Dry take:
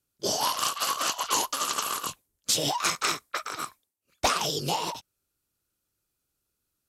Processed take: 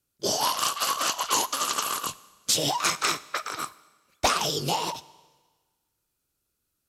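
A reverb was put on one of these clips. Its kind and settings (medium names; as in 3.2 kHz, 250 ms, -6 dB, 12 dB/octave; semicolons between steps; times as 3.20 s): Schroeder reverb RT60 1.4 s, combs from 29 ms, DRR 19 dB; trim +1.5 dB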